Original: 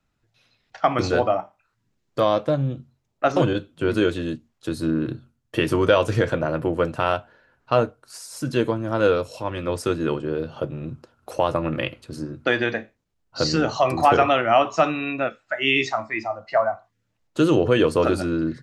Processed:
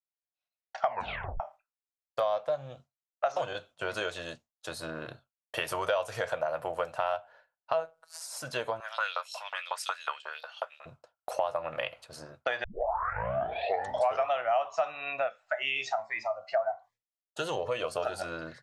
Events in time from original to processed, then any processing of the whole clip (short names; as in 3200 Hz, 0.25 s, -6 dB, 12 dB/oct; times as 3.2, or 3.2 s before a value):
0.86 tape stop 0.54 s
2.51–4.71 bell 6200 Hz +5.5 dB
5.57–6.93 high shelf 9000 Hz +11 dB
7.73–8.21 robotiser 162 Hz
8.8–10.86 LFO high-pass saw up 5.5 Hz 900–4800 Hz
12.64 tape start 1.63 s
15.62–18.22 cascading phaser rising 1.4 Hz
whole clip: resonant low shelf 450 Hz -13.5 dB, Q 3; expander -43 dBFS; compressor 3:1, threshold -27 dBFS; gain -2.5 dB